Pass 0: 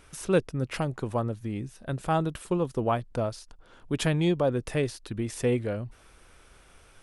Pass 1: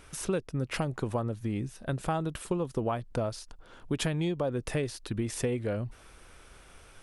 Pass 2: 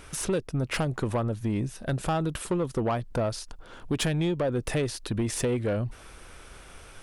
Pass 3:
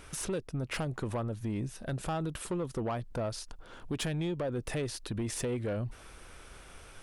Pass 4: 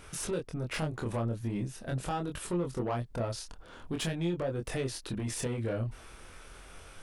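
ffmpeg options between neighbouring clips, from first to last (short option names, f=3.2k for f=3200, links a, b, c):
-af "acompressor=threshold=-28dB:ratio=10,volume=2dB"
-af "asoftclip=type=tanh:threshold=-26dB,volume=6dB"
-af "alimiter=limit=-24dB:level=0:latency=1:release=106,volume=-3.5dB"
-af "flanger=delay=22.5:depth=3.7:speed=0.43,volume=3.5dB"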